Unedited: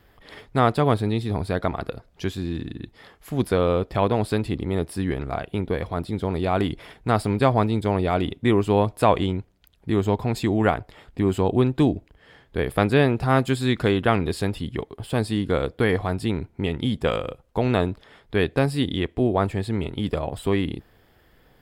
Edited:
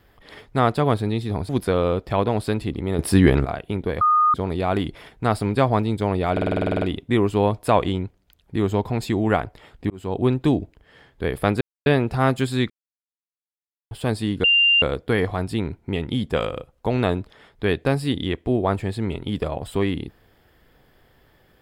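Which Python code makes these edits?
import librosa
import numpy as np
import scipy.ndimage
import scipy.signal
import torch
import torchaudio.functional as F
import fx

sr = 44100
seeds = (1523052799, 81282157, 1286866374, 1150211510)

y = fx.edit(x, sr, fx.cut(start_s=1.49, length_s=1.84),
    fx.clip_gain(start_s=4.83, length_s=0.46, db=11.0),
    fx.bleep(start_s=5.85, length_s=0.33, hz=1230.0, db=-13.5),
    fx.stutter(start_s=8.16, slice_s=0.05, count=11),
    fx.fade_in_span(start_s=11.24, length_s=0.37),
    fx.insert_silence(at_s=12.95, length_s=0.25),
    fx.silence(start_s=13.79, length_s=1.21),
    fx.insert_tone(at_s=15.53, length_s=0.38, hz=2790.0, db=-13.0), tone=tone)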